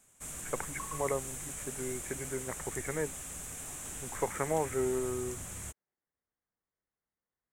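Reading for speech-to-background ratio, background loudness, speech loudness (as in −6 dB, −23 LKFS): 3.0 dB, −40.0 LKFS, −37.0 LKFS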